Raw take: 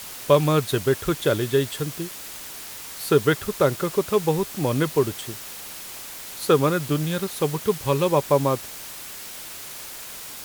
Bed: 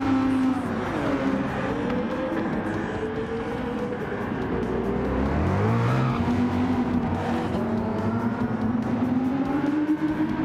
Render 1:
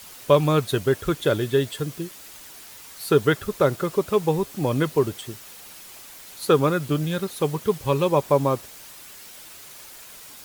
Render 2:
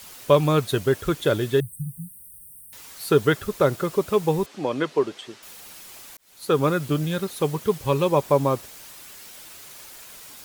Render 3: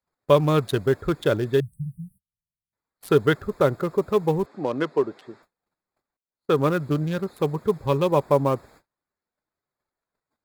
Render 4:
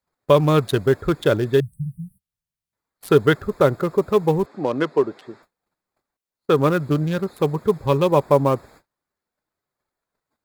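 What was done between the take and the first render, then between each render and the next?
denoiser 7 dB, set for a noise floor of -38 dBFS
1.6–2.73 brick-wall FIR band-stop 200–8100 Hz; 4.46–5.43 BPF 280–5000 Hz; 6.17–6.68 fade in
Wiener smoothing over 15 samples; gate -49 dBFS, range -35 dB
gain +3.5 dB; limiter -2 dBFS, peak gain reduction 2 dB

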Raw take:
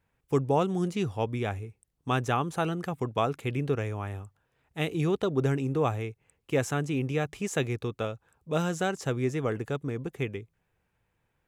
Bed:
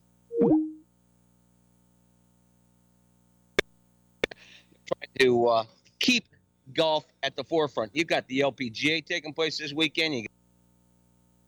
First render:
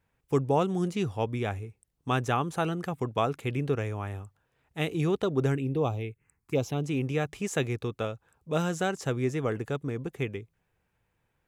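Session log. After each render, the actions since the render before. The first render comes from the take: 5.55–6.85 envelope phaser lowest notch 480 Hz, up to 1800 Hz, full sweep at -23.5 dBFS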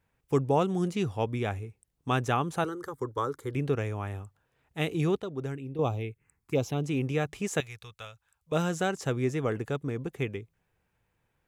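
2.64–3.55 fixed phaser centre 700 Hz, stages 6; 5.2–5.79 gain -8.5 dB; 7.6–8.52 passive tone stack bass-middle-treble 10-0-10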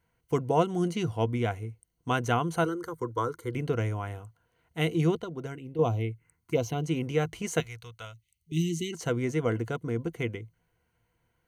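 ripple EQ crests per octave 1.9, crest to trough 10 dB; 8.13–8.93 spectral delete 430–1900 Hz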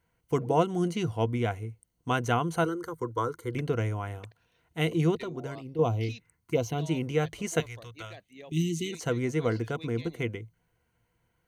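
add bed -22.5 dB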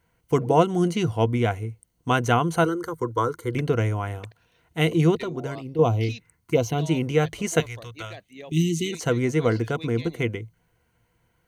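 gain +6 dB

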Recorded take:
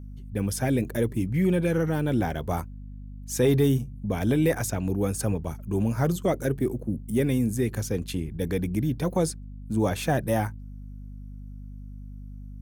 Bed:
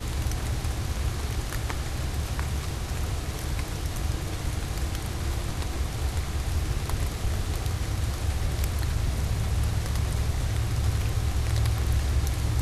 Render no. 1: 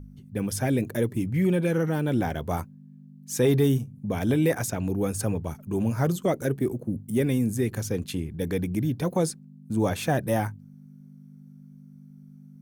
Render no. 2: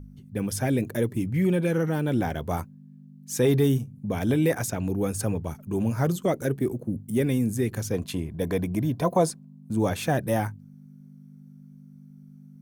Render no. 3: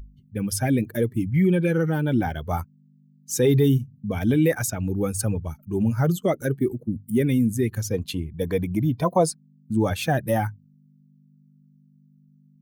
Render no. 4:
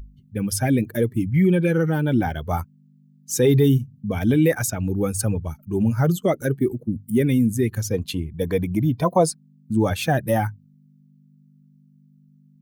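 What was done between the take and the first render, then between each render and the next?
de-hum 50 Hz, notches 2
7.93–9.71 small resonant body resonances 680/1000 Hz, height 12 dB, ringing for 25 ms
per-bin expansion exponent 1.5; in parallel at +1 dB: limiter -20 dBFS, peak gain reduction 7.5 dB
gain +2 dB

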